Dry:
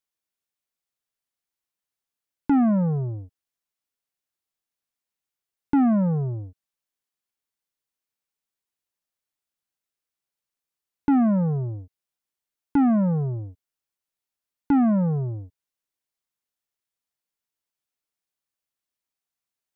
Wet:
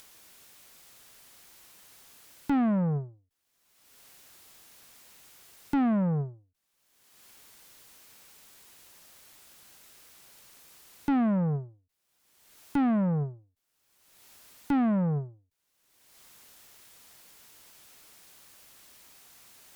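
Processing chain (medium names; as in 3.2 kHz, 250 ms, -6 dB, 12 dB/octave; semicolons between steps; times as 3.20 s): upward compressor, threshold -23 dBFS; valve stage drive 19 dB, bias 0.3; endings held to a fixed fall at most 160 dB/s; trim -2.5 dB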